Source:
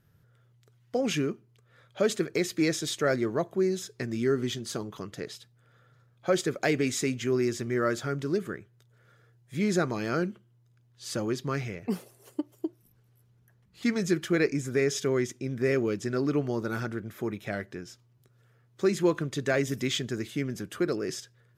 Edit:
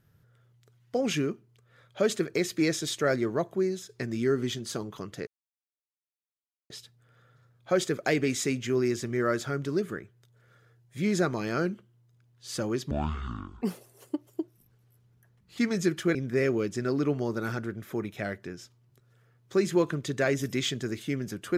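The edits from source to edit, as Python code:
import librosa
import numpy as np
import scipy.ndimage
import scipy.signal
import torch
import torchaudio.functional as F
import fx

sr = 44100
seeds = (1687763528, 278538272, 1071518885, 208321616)

y = fx.edit(x, sr, fx.fade_out_to(start_s=3.53, length_s=0.36, floor_db=-6.5),
    fx.insert_silence(at_s=5.27, length_s=1.43),
    fx.speed_span(start_s=11.48, length_s=0.39, speed=0.55),
    fx.cut(start_s=14.4, length_s=1.03), tone=tone)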